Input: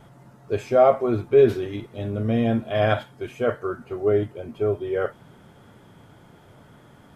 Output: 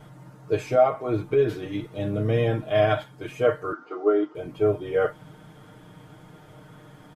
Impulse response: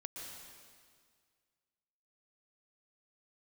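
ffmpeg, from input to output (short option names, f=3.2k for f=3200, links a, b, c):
-filter_complex "[0:a]asettb=1/sr,asplit=3[a][b][c];[a]atrim=end=3.724[d];[b]atrim=start=3.72:end=4.35,asetpts=PTS-STARTPTS,afade=t=in:d=0.004:c=qsin,afade=t=out:st=0.626:d=0.004:c=qsin,highpass=f=310:w=0.5412,highpass=f=310:w=1.3066,equalizer=f=330:t=q:w=4:g=4,equalizer=f=560:t=q:w=4:g=-7,equalizer=f=1.3k:t=q:w=4:g=9,equalizer=f=1.8k:t=q:w=4:g=-7,equalizer=f=2.6k:t=q:w=4:g=-9,equalizer=f=4k:t=q:w=4:g=-4,lowpass=f=5.3k:w=0.5412,lowpass=f=5.3k:w=1.3066[e];[c]atrim=start=4.346[f];[d][e]acrossfade=d=0.004:c1=hsin:c2=qsin[g];[g][f]acrossfade=d=0.004:c1=qsin:c2=hsin,alimiter=limit=-13dB:level=0:latency=1:release=459,aecho=1:1:6.5:0.82"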